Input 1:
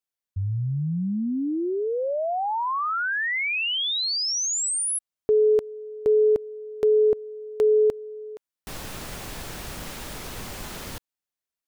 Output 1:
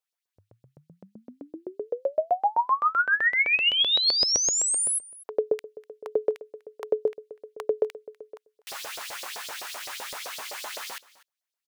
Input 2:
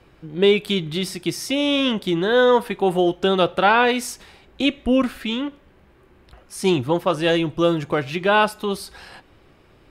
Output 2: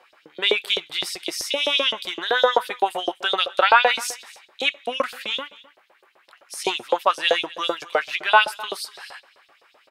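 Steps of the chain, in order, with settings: delay 247 ms -20.5 dB; LFO high-pass saw up 7.8 Hz 520–5300 Hz

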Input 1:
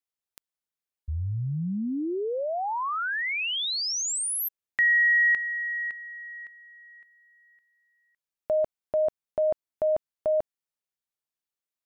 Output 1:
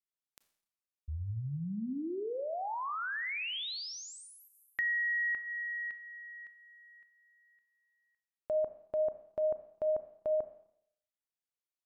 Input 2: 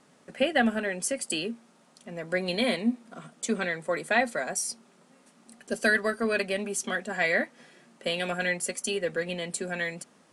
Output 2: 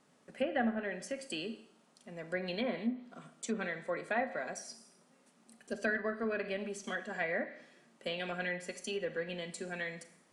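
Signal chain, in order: Schroeder reverb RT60 0.7 s, combs from 28 ms, DRR 10.5 dB; low-pass that closes with the level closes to 1.7 kHz, closed at -21.5 dBFS; trim -8 dB

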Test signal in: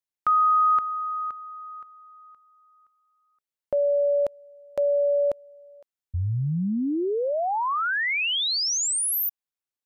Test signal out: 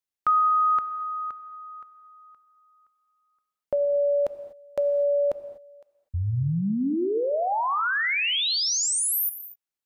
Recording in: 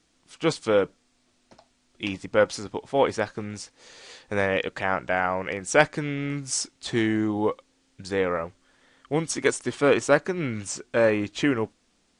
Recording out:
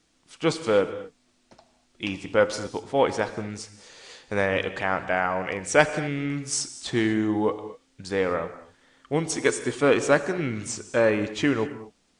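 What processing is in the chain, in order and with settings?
gated-style reverb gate 270 ms flat, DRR 11 dB

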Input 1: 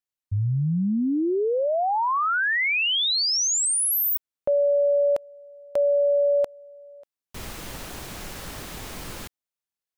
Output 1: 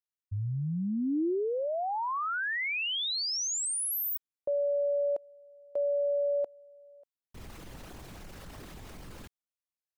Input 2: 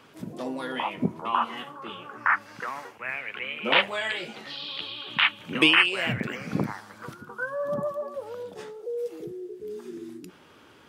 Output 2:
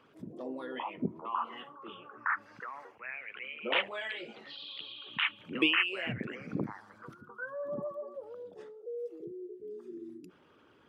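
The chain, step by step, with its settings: resonances exaggerated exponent 1.5; dynamic bell 320 Hz, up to +4 dB, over -42 dBFS, Q 1.8; trim -9 dB

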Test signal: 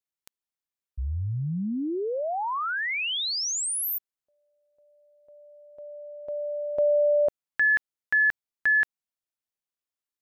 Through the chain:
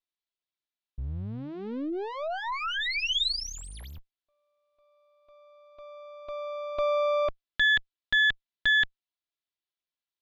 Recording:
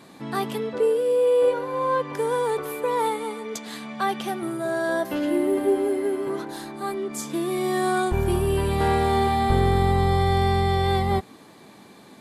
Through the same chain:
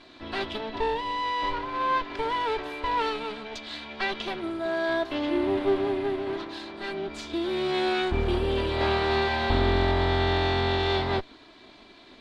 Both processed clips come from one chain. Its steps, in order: comb filter that takes the minimum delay 3 ms; resonant low-pass 3.8 kHz, resonance Q 2.4; trim -2.5 dB

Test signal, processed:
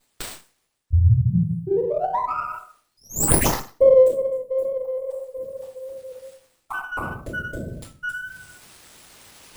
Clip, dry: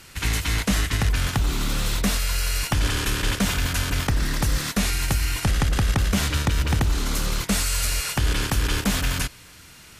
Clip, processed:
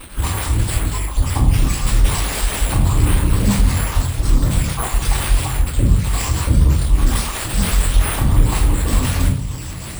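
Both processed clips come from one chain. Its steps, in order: random holes in the spectrogram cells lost 61%; tone controls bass +9 dB, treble +15 dB; peak limiter -14.5 dBFS; simulated room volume 110 m³, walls mixed, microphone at 4.4 m; dynamic bell 8.3 kHz, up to -6 dB, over -31 dBFS, Q 5.8; high-pass 90 Hz 6 dB/octave; wow and flutter 29 cents; Chebyshev band-stop 1.2–7.7 kHz, order 5; reverse; upward compressor, threshold -16 dBFS; reverse; sliding maximum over 3 samples; trim -3.5 dB

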